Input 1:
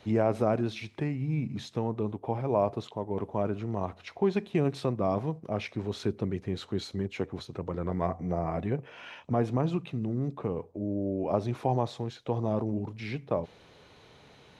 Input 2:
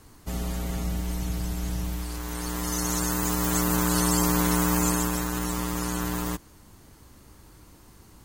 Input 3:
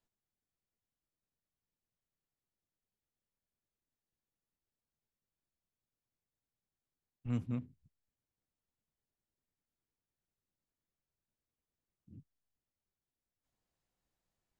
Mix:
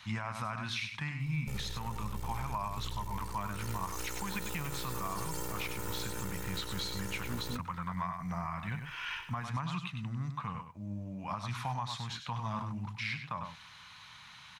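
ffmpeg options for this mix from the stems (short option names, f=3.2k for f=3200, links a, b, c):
-filter_complex "[0:a]firequalizer=gain_entry='entry(180,0);entry(380,-25);entry(1000,11)':delay=0.05:min_phase=1,volume=-4.5dB,asplit=2[a][b];[b]volume=-8.5dB[c];[1:a]aeval=exprs='max(val(0),0)':c=same,aecho=1:1:2.2:0.96,adelay=1200,volume=-10dB[d];[2:a]volume=-3.5dB[e];[c]aecho=0:1:98:1[f];[a][d][e][f]amix=inputs=4:normalize=0,alimiter=level_in=1.5dB:limit=-24dB:level=0:latency=1:release=174,volume=-1.5dB"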